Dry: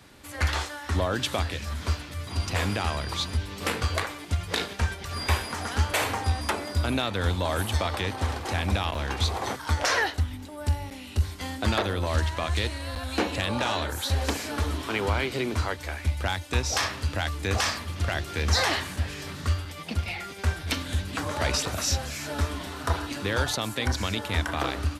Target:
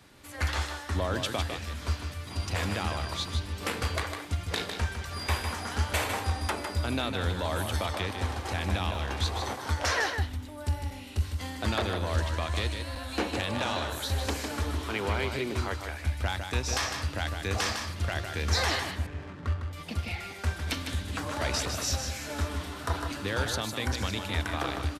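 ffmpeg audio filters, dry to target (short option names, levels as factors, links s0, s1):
-filter_complex "[0:a]asettb=1/sr,asplit=3[s0][s1][s2];[s0]atrim=end=18.914[s3];[s1]atrim=start=18.91:end=19.73,asetpts=PTS-STARTPTS,afade=t=in:d=0.004:c=qsin,afade=t=out:st=0.816:d=0.004:c=qsin,adynamicsmooth=sensitivity=4.5:basefreq=840[s4];[s2]atrim=start=19.726[s5];[s3][s4]acrossfade=d=0.004:c1=hsin:c2=qsin[s6];[s6][s5]acrossfade=d=0.004:c1=qsin:c2=hsin,aecho=1:1:154:0.473,volume=0.631"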